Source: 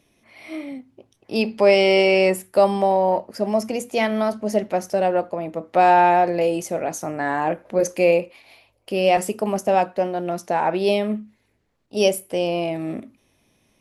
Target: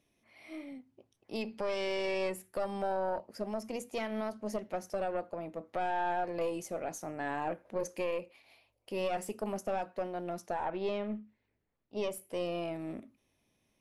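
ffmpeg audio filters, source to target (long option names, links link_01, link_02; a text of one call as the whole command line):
ffmpeg -i in.wav -filter_complex "[0:a]asettb=1/sr,asplit=3[link_01][link_02][link_03];[link_01]atrim=end=10.654[link_04];[link_02]atrim=start=10.65:end=12.11,asetpts=PTS-STARTPTS,afade=type=in:duration=0.004:curve=qsin,afade=type=out:start_time=1.456:duration=0.004:curve=qsin,lowpass=3400[link_05];[link_03]atrim=start=12.106[link_06];[link_04][link_05]acrossfade=duration=0.004:curve1=hsin:curve2=qsin[link_07];[link_07][link_06]acrossfade=duration=0.004:curve1=qsin:curve2=hsin,aeval=exprs='(tanh(2.51*val(0)+0.7)-tanh(0.7))/2.51':channel_layout=same,alimiter=limit=-16dB:level=0:latency=1:release=180,volume=-8.5dB" out.wav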